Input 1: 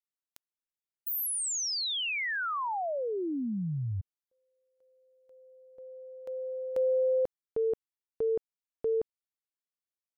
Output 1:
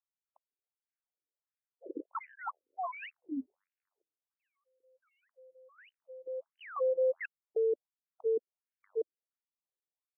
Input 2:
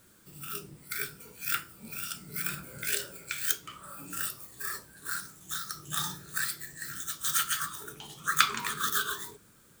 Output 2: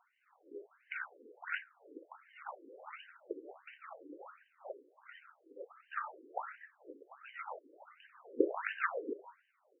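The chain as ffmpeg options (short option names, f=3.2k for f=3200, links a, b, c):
-af "aresample=8000,aresample=44100,acrusher=samples=18:mix=1:aa=0.000001:lfo=1:lforange=18:lforate=1.8,afftfilt=real='re*between(b*sr/1024,360*pow(2200/360,0.5+0.5*sin(2*PI*1.4*pts/sr))/1.41,360*pow(2200/360,0.5+0.5*sin(2*PI*1.4*pts/sr))*1.41)':imag='im*between(b*sr/1024,360*pow(2200/360,0.5+0.5*sin(2*PI*1.4*pts/sr))/1.41,360*pow(2200/360,0.5+0.5*sin(2*PI*1.4*pts/sr))*1.41)':win_size=1024:overlap=0.75"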